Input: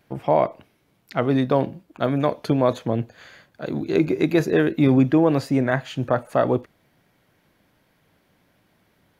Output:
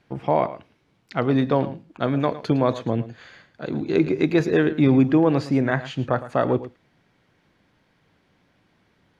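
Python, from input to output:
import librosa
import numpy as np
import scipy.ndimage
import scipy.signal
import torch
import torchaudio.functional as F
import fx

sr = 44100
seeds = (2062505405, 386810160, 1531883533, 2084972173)

p1 = scipy.signal.sosfilt(scipy.signal.butter(2, 6200.0, 'lowpass', fs=sr, output='sos'), x)
p2 = fx.peak_eq(p1, sr, hz=620.0, db=-3.5, octaves=0.36)
y = p2 + fx.echo_single(p2, sr, ms=110, db=-15.0, dry=0)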